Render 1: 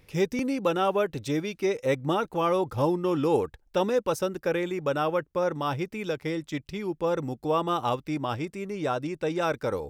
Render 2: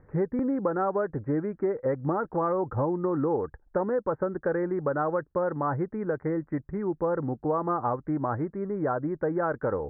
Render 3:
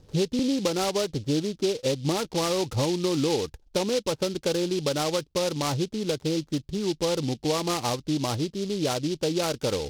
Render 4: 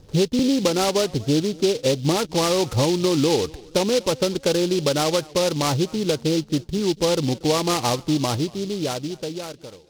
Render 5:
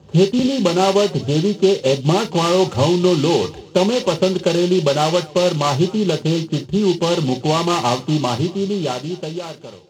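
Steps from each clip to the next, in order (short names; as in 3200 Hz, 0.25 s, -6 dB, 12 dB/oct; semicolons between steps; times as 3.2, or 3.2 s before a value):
steep low-pass 1800 Hz 72 dB/oct; compressor, threshold -26 dBFS, peak gain reduction 8 dB; gain +3 dB
tilt shelf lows +3 dB, about 720 Hz; noise-modulated delay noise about 4000 Hz, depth 0.11 ms
ending faded out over 1.75 s; short-mantissa float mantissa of 4-bit; warbling echo 0.239 s, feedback 44%, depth 150 cents, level -23 dB; gain +5.5 dB
reverb, pre-delay 3 ms, DRR 5 dB; gain -4 dB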